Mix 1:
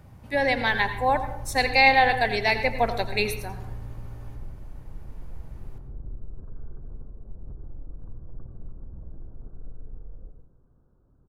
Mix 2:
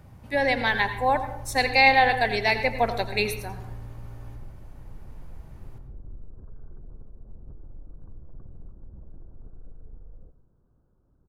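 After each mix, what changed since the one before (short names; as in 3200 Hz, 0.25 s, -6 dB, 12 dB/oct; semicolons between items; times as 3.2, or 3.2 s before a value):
background: send -11.5 dB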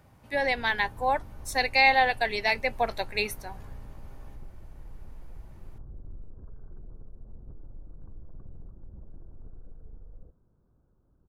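speech: add low shelf 240 Hz -9 dB; reverb: off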